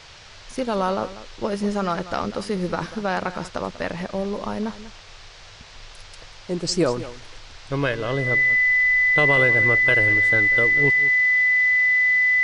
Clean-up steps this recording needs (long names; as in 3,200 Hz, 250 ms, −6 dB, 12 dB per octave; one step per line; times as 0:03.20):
notch filter 2,000 Hz, Q 30
noise reduction from a noise print 24 dB
echo removal 192 ms −15 dB